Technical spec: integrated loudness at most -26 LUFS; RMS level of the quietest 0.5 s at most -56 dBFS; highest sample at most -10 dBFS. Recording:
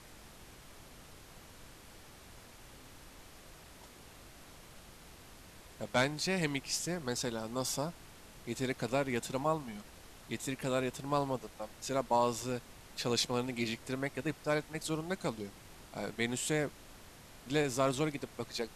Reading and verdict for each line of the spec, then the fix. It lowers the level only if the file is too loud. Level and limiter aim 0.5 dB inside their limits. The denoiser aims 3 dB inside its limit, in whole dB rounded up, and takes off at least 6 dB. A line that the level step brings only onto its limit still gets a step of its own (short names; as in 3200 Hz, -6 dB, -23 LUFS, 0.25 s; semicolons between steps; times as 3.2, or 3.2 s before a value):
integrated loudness -35.5 LUFS: OK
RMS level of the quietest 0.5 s -54 dBFS: fail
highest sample -17.5 dBFS: OK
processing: denoiser 6 dB, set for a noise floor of -54 dBFS